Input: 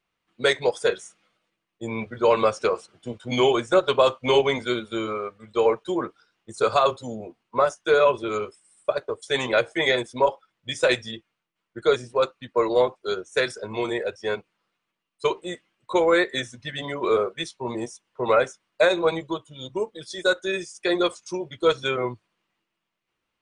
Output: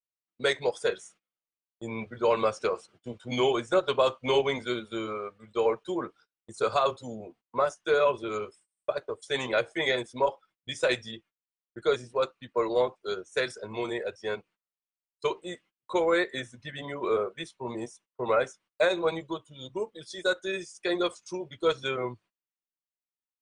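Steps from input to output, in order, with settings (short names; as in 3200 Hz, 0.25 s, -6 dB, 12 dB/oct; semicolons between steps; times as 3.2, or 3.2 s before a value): gate -50 dBFS, range -24 dB; 16.29–18.41 dynamic EQ 5200 Hz, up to -7 dB, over -46 dBFS, Q 1.1; gain -5.5 dB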